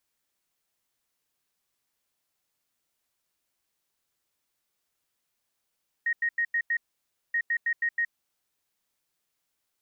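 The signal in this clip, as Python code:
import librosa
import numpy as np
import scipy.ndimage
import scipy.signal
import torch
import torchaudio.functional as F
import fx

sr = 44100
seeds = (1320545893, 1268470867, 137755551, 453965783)

y = fx.beep_pattern(sr, wave='sine', hz=1870.0, on_s=0.07, off_s=0.09, beeps=5, pause_s=0.57, groups=2, level_db=-23.0)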